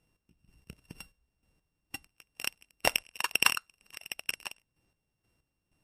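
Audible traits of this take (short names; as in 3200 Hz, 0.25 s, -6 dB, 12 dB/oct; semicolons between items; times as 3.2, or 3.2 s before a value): a buzz of ramps at a fixed pitch in blocks of 16 samples; chopped level 2.1 Hz, depth 65%, duty 35%; MP3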